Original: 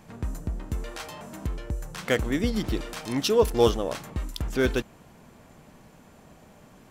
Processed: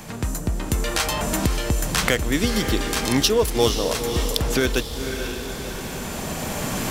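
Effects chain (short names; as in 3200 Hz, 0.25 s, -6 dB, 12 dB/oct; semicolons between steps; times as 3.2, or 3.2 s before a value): recorder AGC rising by 10 dB/s; high shelf 2600 Hz +9.5 dB; on a send: diffused feedback echo 0.517 s, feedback 49%, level -10 dB; 2.43–3.28 on the sum: buzz 400 Hz, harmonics 4, -37 dBFS -3 dB/oct; three-band squash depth 40%; gain +1.5 dB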